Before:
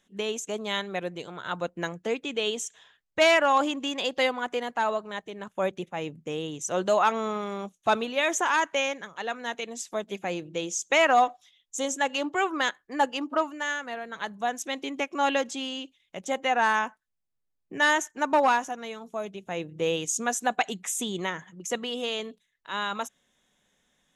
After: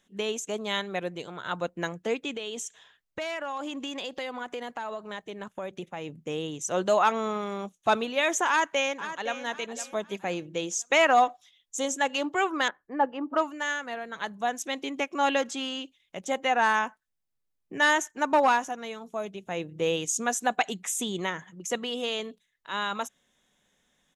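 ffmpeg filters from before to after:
ffmpeg -i in.wav -filter_complex "[0:a]asettb=1/sr,asplit=3[link_01][link_02][link_03];[link_01]atrim=end=2.334[link_04];[link_02]atrim=start=2.33:end=6.26,asetpts=PTS-STARTPTS,afade=type=in:duration=0.004:curve=qsin,afade=type=out:start_time=3.926:duration=0.004:curve=qsin,acompressor=threshold=-31dB:ratio=6:attack=3.2:release=140:knee=1:detection=peak[link_05];[link_03]atrim=start=6.256[link_06];[link_04][link_05]acrossfade=duration=0.004:curve1=hsin:curve2=qsin[link_07];[link_07][link_06]acrossfade=duration=0.004:curve1=qsin:curve2=hsin,asplit=2[link_08][link_09];[link_09]afade=type=in:start_time=8.47:duration=0.01,afade=type=out:start_time=9.4:duration=0.01,aecho=0:1:510|1020|1530:0.237137|0.0711412|0.0213424[link_10];[link_08][link_10]amix=inputs=2:normalize=0,asettb=1/sr,asplit=3[link_11][link_12][link_13];[link_11]atrim=end=12.684[link_14];[link_12]atrim=start=12.68:end=13.34,asetpts=PTS-STARTPTS,afade=type=in:duration=0.004:curve=qsin,afade=type=out:start_time=0.656:duration=0.004:curve=qsin,lowpass=1400[link_15];[link_13]atrim=start=13.336[link_16];[link_14][link_15]acrossfade=duration=0.004:curve1=hsin:curve2=qsin[link_17];[link_17][link_16]acrossfade=duration=0.004:curve1=qsin:curve2=hsin,asettb=1/sr,asplit=3[link_18][link_19][link_20];[link_18]atrim=end=15.424[link_21];[link_19]atrim=start=15.42:end=15.82,asetpts=PTS-STARTPTS,afade=type=in:duration=0.004:curve=qsin,afade=type=out:start_time=0.396:duration=0.004:curve=qsin,equalizer=frequency=1400:width_type=o:width=0.71:gain=7.5[link_22];[link_20]atrim=start=15.816[link_23];[link_21][link_22]acrossfade=duration=0.004:curve1=hsin:curve2=qsin[link_24];[link_24][link_23]acrossfade=duration=0.004:curve1=qsin:curve2=hsin" out.wav

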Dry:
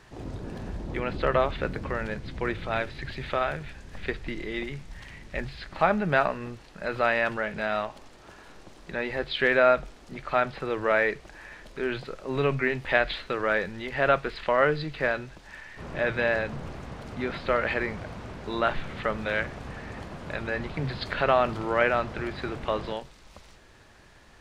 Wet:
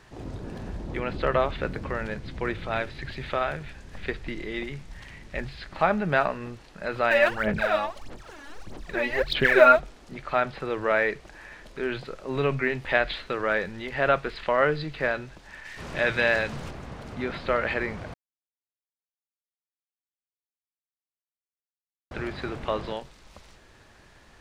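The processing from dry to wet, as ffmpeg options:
ffmpeg -i in.wav -filter_complex "[0:a]asplit=3[link_01][link_02][link_03];[link_01]afade=type=out:start_time=7.1:duration=0.02[link_04];[link_02]aphaser=in_gain=1:out_gain=1:delay=3.6:decay=0.78:speed=1.6:type=sinusoidal,afade=type=in:start_time=7.1:duration=0.02,afade=type=out:start_time=9.79:duration=0.02[link_05];[link_03]afade=type=in:start_time=9.79:duration=0.02[link_06];[link_04][link_05][link_06]amix=inputs=3:normalize=0,asettb=1/sr,asplit=3[link_07][link_08][link_09];[link_07]atrim=end=15.654[link_10];[link_08]atrim=start=15.65:end=16.71,asetpts=PTS-STARTPTS,afade=type=in:duration=0.004:curve=qsin,afade=type=out:start_time=1.056:duration=0.004:curve=qsin,highshelf=frequency=2100:gain=10[link_11];[link_09]atrim=start=16.706[link_12];[link_10][link_11]acrossfade=duration=0.004:curve1=hsin:curve2=qsin[link_13];[link_13][link_12]acrossfade=duration=0.004:curve1=qsin:curve2=hsin,asplit=3[link_14][link_15][link_16];[link_14]atrim=end=18.14,asetpts=PTS-STARTPTS,afade=type=out:start_time=18.136:duration=0.004:curve=hsin[link_17];[link_15]atrim=start=18.14:end=22.11,asetpts=PTS-STARTPTS,volume=0[link_18];[link_16]atrim=start=22.11,asetpts=PTS-STARTPTS,afade=type=in:duration=0.004:curve=hsin[link_19];[link_17][link_18][link_19]concat=n=3:v=0:a=1" out.wav

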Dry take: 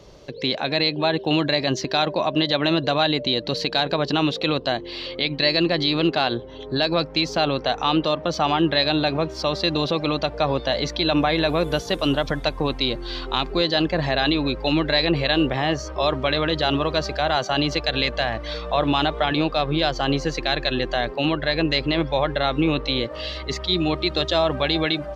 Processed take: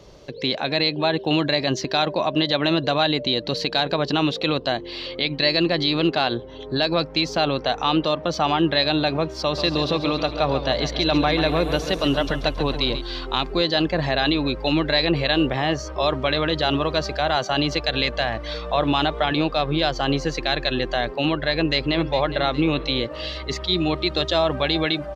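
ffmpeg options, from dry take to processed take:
ffmpeg -i in.wav -filter_complex "[0:a]asplit=3[link_01][link_02][link_03];[link_01]afade=type=out:start_time=9.54:duration=0.02[link_04];[link_02]aecho=1:1:137|274|411|548|685|822|959:0.316|0.18|0.103|0.0586|0.0334|0.019|0.0108,afade=type=in:start_time=9.54:duration=0.02,afade=type=out:start_time=13:duration=0.02[link_05];[link_03]afade=type=in:start_time=13:duration=0.02[link_06];[link_04][link_05][link_06]amix=inputs=3:normalize=0,asplit=2[link_07][link_08];[link_08]afade=type=in:start_time=21.52:duration=0.01,afade=type=out:start_time=22.11:duration=0.01,aecho=0:1:410|820|1230|1640|2050:0.223872|0.111936|0.055968|0.027984|0.013992[link_09];[link_07][link_09]amix=inputs=2:normalize=0" out.wav

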